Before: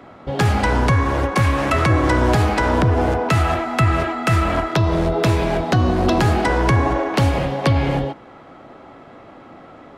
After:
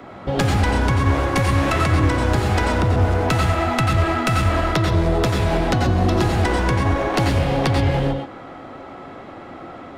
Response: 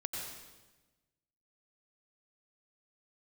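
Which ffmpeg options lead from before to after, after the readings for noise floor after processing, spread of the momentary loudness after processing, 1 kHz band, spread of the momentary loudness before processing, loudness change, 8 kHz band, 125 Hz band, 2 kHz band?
−38 dBFS, 19 LU, −2.0 dB, 4 LU, −1.0 dB, +1.0 dB, 0.0 dB, −1.0 dB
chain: -filter_complex "[0:a]acrossover=split=320|3700[link_01][link_02][link_03];[link_02]aeval=exprs='clip(val(0),-1,0.0668)':channel_layout=same[link_04];[link_01][link_04][link_03]amix=inputs=3:normalize=0,acompressor=threshold=-20dB:ratio=6[link_05];[1:a]atrim=start_sample=2205,atrim=end_sample=6174[link_06];[link_05][link_06]afir=irnorm=-1:irlink=0,volume=5.5dB"

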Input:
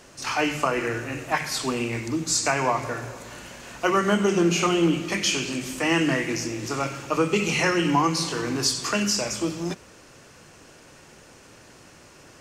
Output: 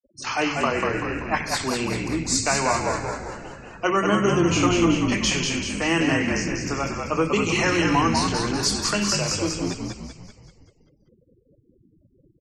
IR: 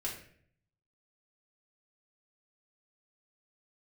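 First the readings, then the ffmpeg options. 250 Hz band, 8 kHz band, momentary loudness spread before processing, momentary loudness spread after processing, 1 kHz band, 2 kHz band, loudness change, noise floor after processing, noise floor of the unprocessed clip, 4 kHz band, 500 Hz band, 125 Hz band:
+2.0 dB, +1.5 dB, 10 LU, 9 LU, +2.0 dB, +1.5 dB, +1.5 dB, −62 dBFS, −50 dBFS, +1.5 dB, +1.0 dB, +3.0 dB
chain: -filter_complex "[0:a]afftfilt=real='re*gte(hypot(re,im),0.0158)':imag='im*gte(hypot(re,im),0.0158)':win_size=1024:overlap=0.75,asplit=8[link_01][link_02][link_03][link_04][link_05][link_06][link_07][link_08];[link_02]adelay=193,afreqshift=-55,volume=-4dB[link_09];[link_03]adelay=386,afreqshift=-110,volume=-9.7dB[link_10];[link_04]adelay=579,afreqshift=-165,volume=-15.4dB[link_11];[link_05]adelay=772,afreqshift=-220,volume=-21dB[link_12];[link_06]adelay=965,afreqshift=-275,volume=-26.7dB[link_13];[link_07]adelay=1158,afreqshift=-330,volume=-32.4dB[link_14];[link_08]adelay=1351,afreqshift=-385,volume=-38.1dB[link_15];[link_01][link_09][link_10][link_11][link_12][link_13][link_14][link_15]amix=inputs=8:normalize=0,asoftclip=type=hard:threshold=-9dB"

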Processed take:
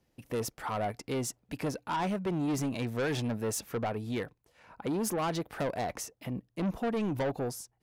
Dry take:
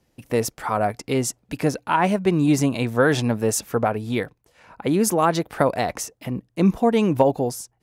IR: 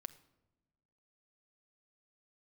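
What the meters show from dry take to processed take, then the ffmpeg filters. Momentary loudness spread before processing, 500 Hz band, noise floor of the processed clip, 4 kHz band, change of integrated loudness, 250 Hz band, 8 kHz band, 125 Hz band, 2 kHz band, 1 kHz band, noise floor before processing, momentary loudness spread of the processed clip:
9 LU, −12.5 dB, −76 dBFS, −9.5 dB, −12.0 dB, −11.5 dB, −10.5 dB, −11.0 dB, −12.0 dB, −12.0 dB, −69 dBFS, 6 LU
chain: -af "equalizer=frequency=7900:width=1.2:gain=-2.5,asoftclip=type=tanh:threshold=-20dB,volume=-7dB"

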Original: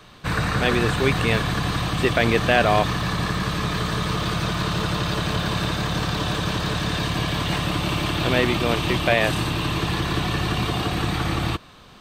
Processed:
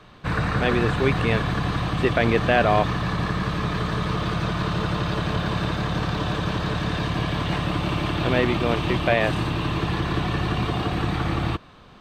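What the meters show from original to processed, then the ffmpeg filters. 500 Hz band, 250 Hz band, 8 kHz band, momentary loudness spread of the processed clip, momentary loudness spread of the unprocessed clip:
0.0 dB, 0.0 dB, −10.0 dB, 5 LU, 5 LU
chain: -af "lowpass=frequency=2200:poles=1"

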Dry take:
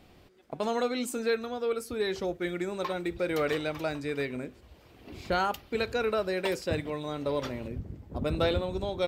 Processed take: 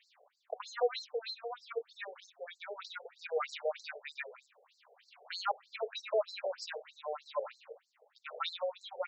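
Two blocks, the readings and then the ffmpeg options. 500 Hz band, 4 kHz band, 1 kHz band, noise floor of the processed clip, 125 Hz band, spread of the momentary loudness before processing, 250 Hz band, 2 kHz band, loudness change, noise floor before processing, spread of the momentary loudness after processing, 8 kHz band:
−8.0 dB, −4.5 dB, −6.0 dB, −74 dBFS, below −40 dB, 9 LU, below −35 dB, −8.5 dB, −8.0 dB, −57 dBFS, 14 LU, −11.5 dB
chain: -af "afftfilt=real='re*between(b*sr/1024,550*pow(5800/550,0.5+0.5*sin(2*PI*3.2*pts/sr))/1.41,550*pow(5800/550,0.5+0.5*sin(2*PI*3.2*pts/sr))*1.41)':imag='im*between(b*sr/1024,550*pow(5800/550,0.5+0.5*sin(2*PI*3.2*pts/sr))/1.41,550*pow(5800/550,0.5+0.5*sin(2*PI*3.2*pts/sr))*1.41)':win_size=1024:overlap=0.75,volume=1dB"

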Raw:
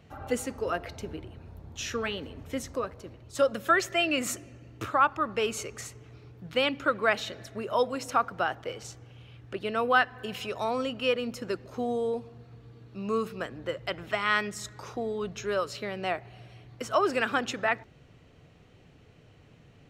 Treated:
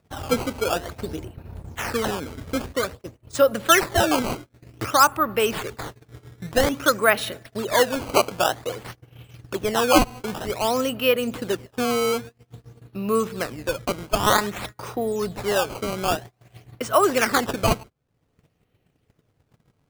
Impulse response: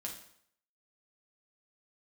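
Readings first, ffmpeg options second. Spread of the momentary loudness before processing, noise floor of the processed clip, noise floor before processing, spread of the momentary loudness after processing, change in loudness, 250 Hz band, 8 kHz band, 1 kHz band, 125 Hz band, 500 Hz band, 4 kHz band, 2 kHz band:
16 LU, −70 dBFS, −57 dBFS, 16 LU, +7.0 dB, +8.0 dB, +11.0 dB, +6.5 dB, +9.5 dB, +7.0 dB, +7.5 dB, +4.0 dB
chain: -af "acompressor=mode=upward:threshold=-35dB:ratio=2.5,acrusher=samples=14:mix=1:aa=0.000001:lfo=1:lforange=22.4:lforate=0.52,agate=range=-30dB:threshold=-41dB:ratio=16:detection=peak,volume=7dB"

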